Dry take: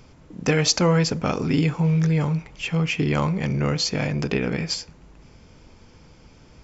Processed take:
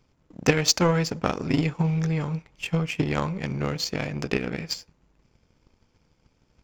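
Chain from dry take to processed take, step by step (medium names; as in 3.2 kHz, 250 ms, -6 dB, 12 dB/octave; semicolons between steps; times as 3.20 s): power-law waveshaper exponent 1.4; transient shaper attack +6 dB, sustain +1 dB; trim -1 dB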